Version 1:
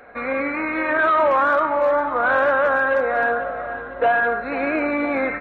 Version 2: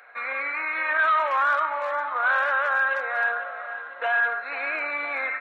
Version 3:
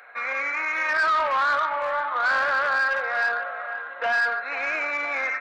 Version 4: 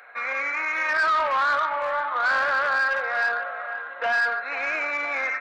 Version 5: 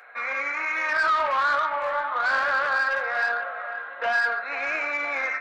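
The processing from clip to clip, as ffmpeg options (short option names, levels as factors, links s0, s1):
-af "highpass=1200"
-af "asoftclip=type=tanh:threshold=0.106,volume=1.33"
-af anull
-af "flanger=delay=9.8:depth=4.6:regen=-60:speed=1.2:shape=sinusoidal,volume=1.5"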